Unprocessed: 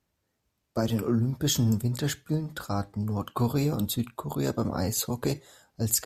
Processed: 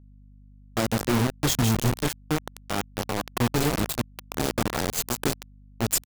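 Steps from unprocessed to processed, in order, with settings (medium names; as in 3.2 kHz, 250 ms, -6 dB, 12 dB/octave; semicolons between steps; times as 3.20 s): frequency-shifting echo 155 ms, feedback 31%, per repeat -100 Hz, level -8 dB; bit crusher 4-bit; hum 50 Hz, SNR 23 dB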